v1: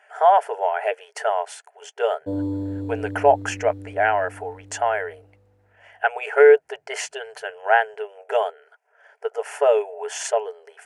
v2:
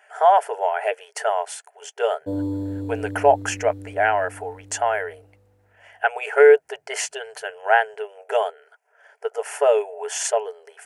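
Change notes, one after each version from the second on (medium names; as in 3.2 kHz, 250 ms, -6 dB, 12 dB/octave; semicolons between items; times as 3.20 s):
master: add treble shelf 7 kHz +9.5 dB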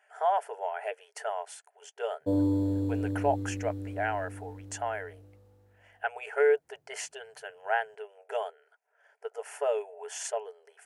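speech -11.5 dB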